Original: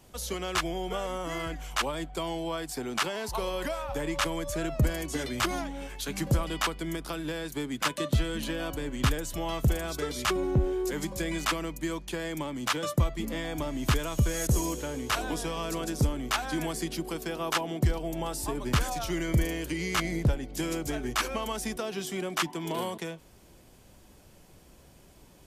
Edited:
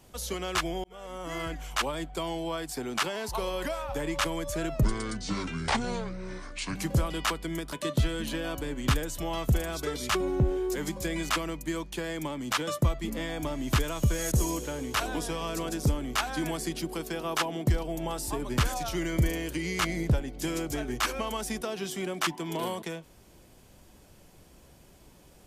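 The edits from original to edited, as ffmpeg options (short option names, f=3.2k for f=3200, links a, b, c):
-filter_complex "[0:a]asplit=5[a][b][c][d][e];[a]atrim=end=0.84,asetpts=PTS-STARTPTS,afade=t=out:st=0.836:d=0.004:c=hsin[f];[b]atrim=start=0.84:end=4.834,asetpts=PTS-STARTPTS,afade=t=in:d=0.58[g];[c]atrim=start=4.83:end=6.12,asetpts=PTS-STARTPTS,asetrate=29547,aresample=44100[h];[d]atrim=start=6.116:end=7.092[i];[e]atrim=start=7.878[j];[f][g]concat=n=2:v=0:a=1[k];[k][h]acrossfade=d=0.004:c1=hsin:c2=hsin[l];[l][i]acrossfade=d=0.004:c1=hsin:c2=hsin[m];[m][j]acrossfade=d=0.004:c1=hsin:c2=hsin"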